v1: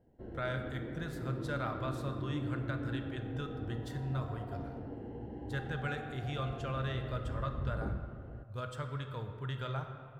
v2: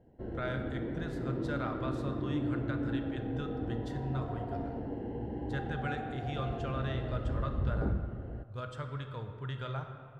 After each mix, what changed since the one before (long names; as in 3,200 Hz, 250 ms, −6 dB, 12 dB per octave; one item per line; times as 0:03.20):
background +6.0 dB
master: add high-frequency loss of the air 50 metres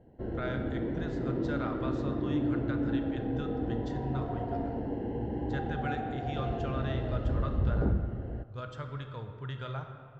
background +4.0 dB
master: add Butterworth low-pass 7,500 Hz 72 dB per octave